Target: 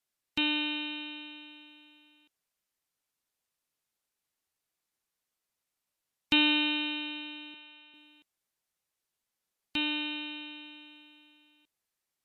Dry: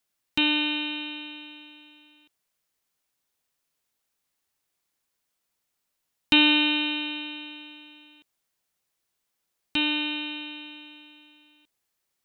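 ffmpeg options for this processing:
-filter_complex "[0:a]asettb=1/sr,asplit=3[s0][s1][s2];[s0]atrim=end=7.544[s3];[s1]atrim=start=7.54:end=7.94,asetpts=PTS-STARTPTS,afade=t=in:d=0.004:c=qsin,afade=t=out:st=0.396:d=0.004:c=qsin,highpass=490,lowpass=4300[s4];[s2]atrim=start=7.936[s5];[s3][s4]acrossfade=d=0.004:c1=hsin:c2=qsin[s6];[s6][s5]acrossfade=d=0.004:c1=qsin:c2=hsin,volume=0.531" -ar 32000 -c:a libmp3lame -b:a 64k

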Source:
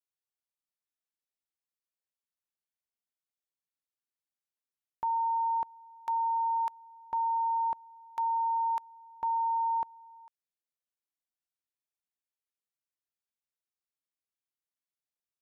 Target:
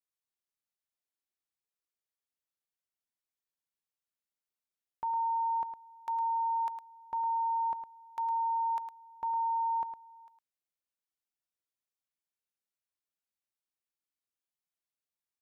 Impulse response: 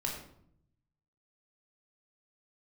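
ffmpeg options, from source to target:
-af "aecho=1:1:108:0.355,volume=0.708"

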